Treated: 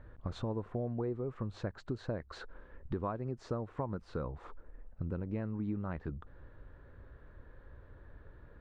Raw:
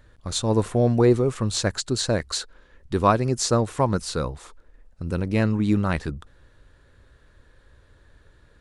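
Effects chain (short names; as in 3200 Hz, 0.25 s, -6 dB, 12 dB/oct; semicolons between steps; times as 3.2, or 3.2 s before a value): LPF 1400 Hz 12 dB/oct; compressor 6:1, threshold -36 dBFS, peak gain reduction 21 dB; gain +1 dB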